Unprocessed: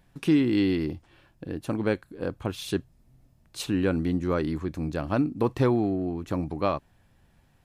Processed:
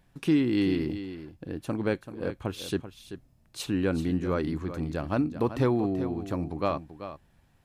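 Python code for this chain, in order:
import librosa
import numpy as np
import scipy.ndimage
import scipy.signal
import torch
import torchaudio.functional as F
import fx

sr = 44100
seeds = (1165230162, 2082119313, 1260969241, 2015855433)

y = x + 10.0 ** (-11.5 / 20.0) * np.pad(x, (int(385 * sr / 1000.0), 0))[:len(x)]
y = y * librosa.db_to_amplitude(-2.0)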